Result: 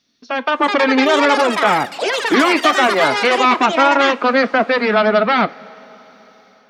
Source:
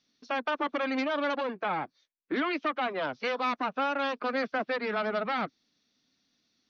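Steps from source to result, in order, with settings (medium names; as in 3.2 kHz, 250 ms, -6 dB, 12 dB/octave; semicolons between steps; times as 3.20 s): ever faster or slower copies 478 ms, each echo +7 st, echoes 3, each echo -6 dB; level rider gain up to 7.5 dB; two-slope reverb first 0.21 s, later 4.4 s, from -21 dB, DRR 12 dB; trim +8 dB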